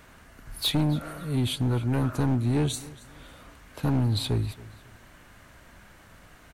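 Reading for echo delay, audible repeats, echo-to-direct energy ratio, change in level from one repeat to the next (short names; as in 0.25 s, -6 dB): 0.275 s, 2, -19.5 dB, -11.5 dB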